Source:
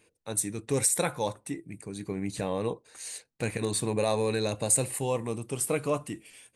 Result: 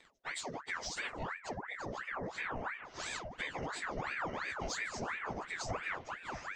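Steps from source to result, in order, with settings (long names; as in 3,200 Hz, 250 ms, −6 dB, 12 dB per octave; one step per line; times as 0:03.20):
phase-vocoder pitch shift without resampling −7.5 semitones
in parallel at −8 dB: soft clipping −27 dBFS, distortion −11 dB
on the sum: high-shelf EQ 4,800 Hz −10 dB
downward compressor 4 to 1, threshold −42 dBFS, peak gain reduction 17.5 dB
on a send: echo through a band-pass that steps 589 ms, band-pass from 290 Hz, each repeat 0.7 octaves, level −2 dB
on the sum: dynamic equaliser 1,400 Hz, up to +4 dB, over −59 dBFS, Q 1
ring modulator whose carrier an LFO sweeps 1,200 Hz, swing 75%, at 2.9 Hz
level +4 dB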